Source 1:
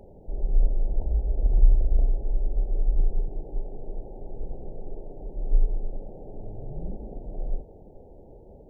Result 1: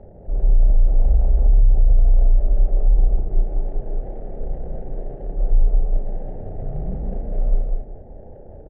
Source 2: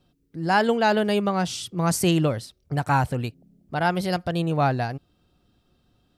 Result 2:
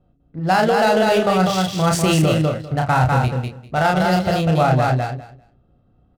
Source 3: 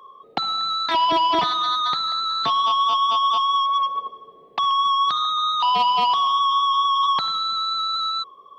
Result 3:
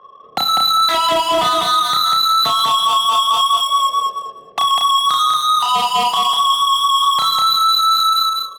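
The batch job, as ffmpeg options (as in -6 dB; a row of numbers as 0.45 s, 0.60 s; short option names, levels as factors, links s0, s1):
-filter_complex "[0:a]aecho=1:1:1.5:0.35,asplit=2[s0][s1];[s1]aecho=0:1:32|54:0.668|0.188[s2];[s0][s2]amix=inputs=2:normalize=0,adynamicsmooth=sensitivity=7.5:basefreq=1100,asplit=2[s3][s4];[s4]aecho=0:1:198|396|594:0.631|0.101|0.0162[s5];[s3][s5]amix=inputs=2:normalize=0,alimiter=limit=0.251:level=0:latency=1:release=30,volume=1.68"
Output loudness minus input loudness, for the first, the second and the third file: +7.5 LU, +6.0 LU, +6.0 LU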